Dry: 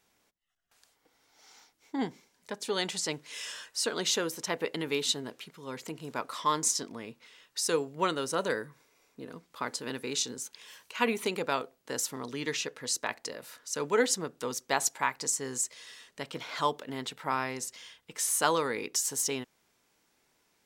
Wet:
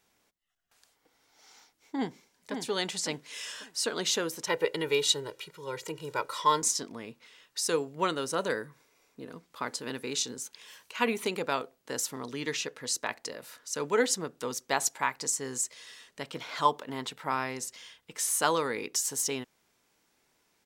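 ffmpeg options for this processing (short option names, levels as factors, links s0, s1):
-filter_complex "[0:a]asplit=2[s0][s1];[s1]afade=t=in:st=1.95:d=0.01,afade=t=out:st=2.53:d=0.01,aecho=0:1:550|1100|1650|2200:0.501187|0.150356|0.0451069|0.0135321[s2];[s0][s2]amix=inputs=2:normalize=0,asettb=1/sr,asplit=3[s3][s4][s5];[s3]atrim=end=4.474[s6];[s4]atrim=start=4.47:end=6.62,asetpts=PTS-STARTPTS,afade=t=in:d=0.004:c=qsin,afade=t=out:st=2.146:d=0.004:c=qsin,aecho=1:1:2.1:0.9,atrim=end_sample=94815[s7];[s5]atrim=start=6.616[s8];[s6][s7]acrossfade=d=0.004:c1=hsin:c2=qsin[s9];[s9][s8]acrossfade=d=0.004:c1=qsin:c2=hsin,asettb=1/sr,asplit=3[s10][s11][s12];[s10]atrim=end=16.654[s13];[s11]atrim=start=16.65:end=17.1,asetpts=PTS-STARTPTS,afade=t=in:d=0.004:c=qsin,afade=t=out:st=0.446:d=0.004:c=qsin,equalizer=f=1000:t=o:w=0.66:g=6.5[s14];[s12]atrim=start=17.096[s15];[s13][s14]acrossfade=d=0.004:c1=hsin:c2=qsin[s16];[s16][s15]acrossfade=d=0.004:c1=qsin:c2=hsin"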